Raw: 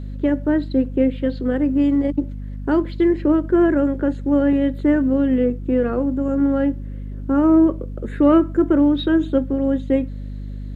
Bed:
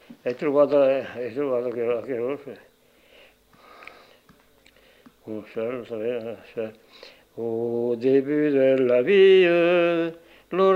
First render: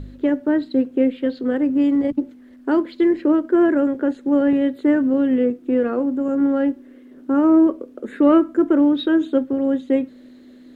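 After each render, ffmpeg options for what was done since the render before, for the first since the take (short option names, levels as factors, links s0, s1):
-af "bandreject=f=50:t=h:w=4,bandreject=f=100:t=h:w=4,bandreject=f=150:t=h:w=4,bandreject=f=200:t=h:w=4"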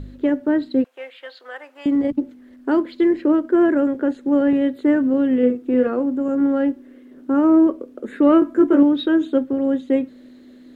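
-filter_complex "[0:a]asettb=1/sr,asplit=3[s0][s1][s2];[s0]atrim=end=0.844[s3];[s1]atrim=start=0.84:end=1.86,asetpts=PTS-STARTPTS,afade=t=in:d=0.004:c=qsin,afade=t=out:st=1.016:d=0.004:c=qsin,highpass=f=770:w=0.5412,highpass=f=770:w=1.3066[s4];[s2]atrim=start=1.856[s5];[s3][s4]acrossfade=d=0.004:c1=hsin:c2=qsin[s6];[s6][s5]acrossfade=d=0.004:c1=qsin:c2=hsin,asettb=1/sr,asplit=3[s7][s8][s9];[s7]atrim=end=5.384[s10];[s8]atrim=start=5.38:end=5.87,asetpts=PTS-STARTPTS,afade=t=in:d=0.004:c=qsin,afade=t=out:st=0.486:d=0.004:c=qsin,asplit=2[s11][s12];[s12]adelay=48,volume=0.501[s13];[s11][s13]amix=inputs=2:normalize=0,atrim=end_sample=21609[s14];[s9]atrim=start=5.866[s15];[s10][s14]acrossfade=d=0.004:c1=hsin:c2=qsin[s16];[s16][s15]acrossfade=d=0.004:c1=qsin:c2=hsin,asettb=1/sr,asplit=3[s17][s18][s19];[s17]atrim=end=8.404[s20];[s18]atrim=start=8.4:end=8.83,asetpts=PTS-STARTPTS,afade=t=in:d=0.004:c=qsin,afade=t=out:st=0.426:d=0.004:c=qsin,asplit=2[s21][s22];[s22]adelay=17,volume=0.75[s23];[s21][s23]amix=inputs=2:normalize=0,atrim=end_sample=18963[s24];[s19]atrim=start=8.826[s25];[s20][s24]acrossfade=d=0.004:c1=hsin:c2=qsin[s26];[s26][s25]acrossfade=d=0.004:c1=qsin:c2=hsin"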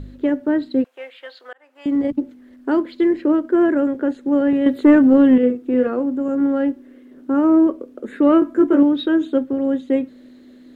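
-filter_complex "[0:a]asettb=1/sr,asplit=3[s0][s1][s2];[s0]atrim=end=4.664[s3];[s1]atrim=start=4.66:end=5.38,asetpts=PTS-STARTPTS,afade=t=in:d=0.004:c=qsin,afade=t=out:st=0.716:d=0.004:c=qsin,acontrast=85[s4];[s2]atrim=start=5.376[s5];[s3][s4]acrossfade=d=0.004:c1=hsin:c2=qsin[s6];[s6][s5]acrossfade=d=0.004:c1=qsin:c2=hsin,asplit=2[s7][s8];[s7]atrim=end=1.53,asetpts=PTS-STARTPTS,afade=t=out:st=1.526:d=0.004:c=hsin[s9];[s8]atrim=start=1.53,asetpts=PTS-STARTPTS,afade=t=in:d=0.44[s10];[s9][s10]concat=n=2:v=0:a=1"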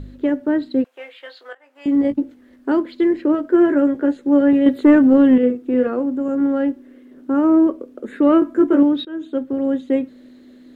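-filter_complex "[0:a]asettb=1/sr,asplit=3[s0][s1][s2];[s0]atrim=end=0.944[s3];[s1]atrim=start=0.94:end=2.72,asetpts=PTS-STARTPTS,afade=t=in:d=0.004:c=qsin,afade=t=out:st=1.776:d=0.004:c=qsin,asplit=2[s4][s5];[s5]adelay=18,volume=0.398[s6];[s4][s6]amix=inputs=2:normalize=0,atrim=end_sample=78498[s7];[s2]atrim=start=2.716[s8];[s3][s7]acrossfade=d=0.004:c1=hsin:c2=qsin[s9];[s9][s8]acrossfade=d=0.004:c1=qsin:c2=hsin,asettb=1/sr,asplit=3[s10][s11][s12];[s10]atrim=end=3.334[s13];[s11]atrim=start=3.33:end=4.69,asetpts=PTS-STARTPTS,afade=t=in:d=0.004:c=qsin,afade=t=out:st=1.356:d=0.004:c=qsin,asplit=2[s14][s15];[s15]adelay=14,volume=0.473[s16];[s14][s16]amix=inputs=2:normalize=0,atrim=end_sample=59976[s17];[s12]atrim=start=4.686[s18];[s13][s17]acrossfade=d=0.004:c1=hsin:c2=qsin[s19];[s19][s18]acrossfade=d=0.004:c1=qsin:c2=hsin,asplit=2[s20][s21];[s20]atrim=end=9.05,asetpts=PTS-STARTPTS,afade=t=out:st=9.046:d=0.004:c=hsin:silence=0.1[s22];[s21]atrim=start=9.05,asetpts=PTS-STARTPTS,afade=t=in:d=0.54:silence=0.1[s23];[s22][s23]concat=n=2:v=0:a=1"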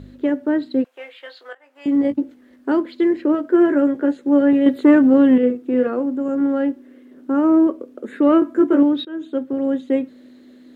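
-af "highpass=f=120:p=1"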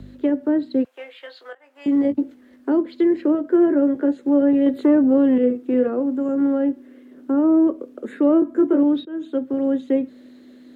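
-filter_complex "[0:a]acrossover=split=100|380|780[s0][s1][s2][s3];[s1]alimiter=limit=0.168:level=0:latency=1[s4];[s3]acompressor=threshold=0.0112:ratio=6[s5];[s0][s4][s2][s5]amix=inputs=4:normalize=0"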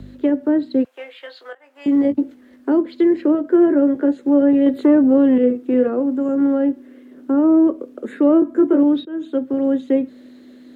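-af "volume=1.33"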